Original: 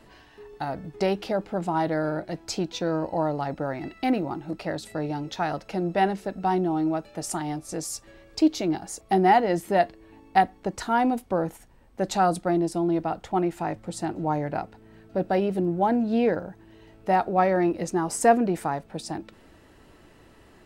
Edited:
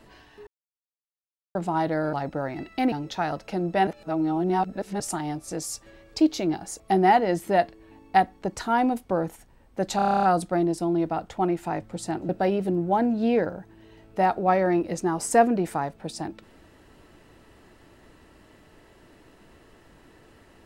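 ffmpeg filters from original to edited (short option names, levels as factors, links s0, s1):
-filter_complex "[0:a]asplit=17[s0][s1][s2][s3][s4][s5][s6][s7][s8][s9][s10][s11][s12][s13][s14][s15][s16];[s0]atrim=end=0.47,asetpts=PTS-STARTPTS,afade=t=out:st=0.466:d=0.004:c=hsin[s17];[s1]atrim=start=0.47:end=1.55,asetpts=PTS-STARTPTS,volume=0[s18];[s2]atrim=start=1.55:end=2.132,asetpts=PTS-STARTPTS,afade=t=in:d=0.004:c=hsin[s19];[s3]atrim=start=3.378:end=4.172[s20];[s4]atrim=start=5.128:end=6.082[s21];[s5]atrim=start=6.078:end=7.212,asetpts=PTS-STARTPTS,areverse[s22];[s6]atrim=start=7.208:end=12.202[s23];[s7]atrim=start=12.168:end=12.202[s24];[s8]atrim=start=12.168:end=12.202[s25];[s9]atrim=start=12.168:end=12.202[s26];[s10]atrim=start=12.168:end=12.202[s27];[s11]atrim=start=12.168:end=12.202[s28];[s12]atrim=start=12.168:end=12.202[s29];[s13]atrim=start=12.168:end=12.202[s30];[s14]atrim=start=12.168:end=12.202[s31];[s15]atrim=start=12.168:end=14.232[s32];[s16]atrim=start=15.188[s33];[s17][s18][s19]concat=n=3:v=0:a=1[s34];[s34][s20]acrossfade=d=0.004:c1=hsin:c2=hsin[s35];[s35][s21]acrossfade=d=0.004:c1=hsin:c2=hsin[s36];[s36][s22]acrossfade=d=0.004:c1=hsin:c2=hsin[s37];[s37][s23]acrossfade=d=0.004:c1=hsin:c2=hsin[s38];[s38][s24]acrossfade=d=0.004:c1=hsin:c2=hsin[s39];[s39][s25]acrossfade=d=0.004:c1=hsin:c2=hsin[s40];[s40][s26]acrossfade=d=0.004:c1=hsin:c2=hsin[s41];[s41][s27]acrossfade=d=0.004:c1=hsin:c2=hsin[s42];[s42][s28]acrossfade=d=0.004:c1=hsin:c2=hsin[s43];[s43][s29]acrossfade=d=0.004:c1=hsin:c2=hsin[s44];[s44][s30]acrossfade=d=0.004:c1=hsin:c2=hsin[s45];[s45][s31]acrossfade=d=0.004:c1=hsin:c2=hsin[s46];[s46][s32]acrossfade=d=0.004:c1=hsin:c2=hsin[s47];[s47][s33]acrossfade=d=0.004:c1=hsin:c2=hsin"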